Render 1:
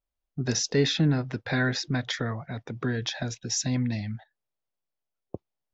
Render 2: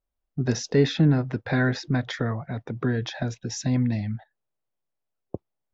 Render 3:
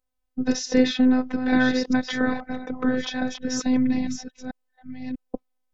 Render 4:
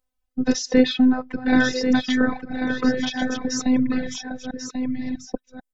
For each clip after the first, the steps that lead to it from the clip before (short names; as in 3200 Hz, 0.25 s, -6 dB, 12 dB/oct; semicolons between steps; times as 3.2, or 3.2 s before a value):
high shelf 2400 Hz -11.5 dB; gain +4 dB
reverse delay 0.644 s, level -7 dB; robotiser 255 Hz; gain +4.5 dB
reverb removal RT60 1.4 s; echo 1.09 s -7.5 dB; gain +3 dB